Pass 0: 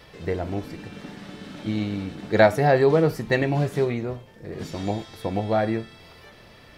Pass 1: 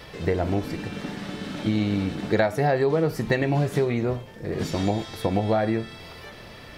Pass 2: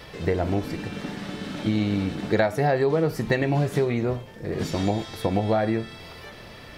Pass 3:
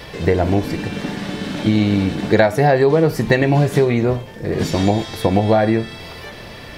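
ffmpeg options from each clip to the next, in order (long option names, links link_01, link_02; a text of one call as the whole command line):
ffmpeg -i in.wav -af "acompressor=threshold=-25dB:ratio=6,volume=6dB" out.wav
ffmpeg -i in.wav -af anull out.wav
ffmpeg -i in.wav -af "bandreject=frequency=1300:width=17,volume=8dB" out.wav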